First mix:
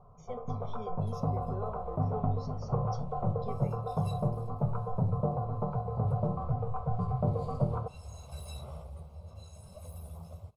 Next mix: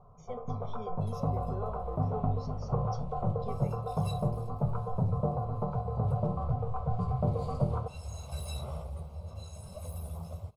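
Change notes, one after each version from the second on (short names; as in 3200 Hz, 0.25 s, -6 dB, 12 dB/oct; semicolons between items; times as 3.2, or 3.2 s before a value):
second sound +5.0 dB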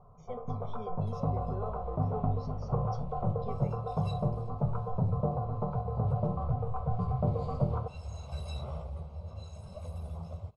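master: add air absorption 93 m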